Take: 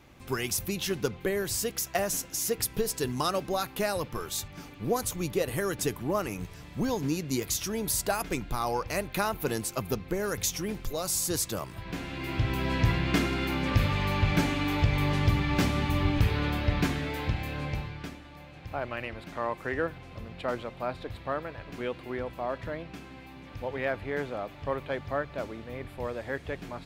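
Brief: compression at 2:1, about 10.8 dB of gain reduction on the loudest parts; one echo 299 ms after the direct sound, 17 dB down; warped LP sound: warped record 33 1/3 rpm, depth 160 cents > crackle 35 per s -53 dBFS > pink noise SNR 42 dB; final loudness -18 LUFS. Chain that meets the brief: compression 2:1, threshold -39 dBFS; delay 299 ms -17 dB; warped record 33 1/3 rpm, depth 160 cents; crackle 35 per s -53 dBFS; pink noise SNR 42 dB; trim +20 dB

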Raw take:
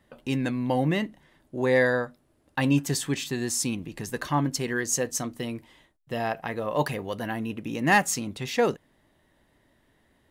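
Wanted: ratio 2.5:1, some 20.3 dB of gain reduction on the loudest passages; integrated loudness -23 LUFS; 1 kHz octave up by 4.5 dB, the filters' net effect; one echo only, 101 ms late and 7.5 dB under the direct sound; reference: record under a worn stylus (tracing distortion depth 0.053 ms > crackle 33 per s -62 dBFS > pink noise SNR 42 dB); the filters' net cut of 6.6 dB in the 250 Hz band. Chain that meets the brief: peaking EQ 250 Hz -8.5 dB; peaking EQ 1 kHz +6.5 dB; compression 2.5:1, threshold -45 dBFS; delay 101 ms -7.5 dB; tracing distortion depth 0.053 ms; crackle 33 per s -62 dBFS; pink noise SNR 42 dB; trim +18.5 dB

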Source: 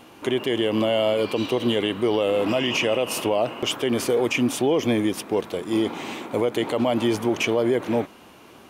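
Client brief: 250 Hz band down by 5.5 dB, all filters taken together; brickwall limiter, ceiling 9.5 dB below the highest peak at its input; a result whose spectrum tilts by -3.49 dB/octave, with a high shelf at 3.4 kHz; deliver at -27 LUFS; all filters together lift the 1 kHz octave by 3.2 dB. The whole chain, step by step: peaking EQ 250 Hz -8 dB; peaking EQ 1 kHz +5.5 dB; treble shelf 3.4 kHz -8 dB; trim +2.5 dB; peak limiter -17.5 dBFS

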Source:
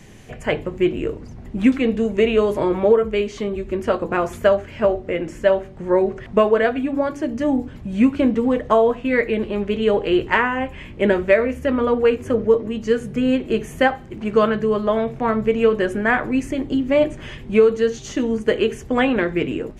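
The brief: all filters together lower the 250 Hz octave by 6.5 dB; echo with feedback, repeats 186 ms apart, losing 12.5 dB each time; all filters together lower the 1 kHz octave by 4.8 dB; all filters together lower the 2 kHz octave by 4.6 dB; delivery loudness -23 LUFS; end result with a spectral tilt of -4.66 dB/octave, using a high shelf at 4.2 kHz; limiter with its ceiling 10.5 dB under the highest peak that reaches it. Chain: peaking EQ 250 Hz -7.5 dB; peaking EQ 1 kHz -5 dB; peaking EQ 2 kHz -5 dB; treble shelf 4.2 kHz +5 dB; peak limiter -16 dBFS; feedback delay 186 ms, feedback 24%, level -12.5 dB; trim +3.5 dB

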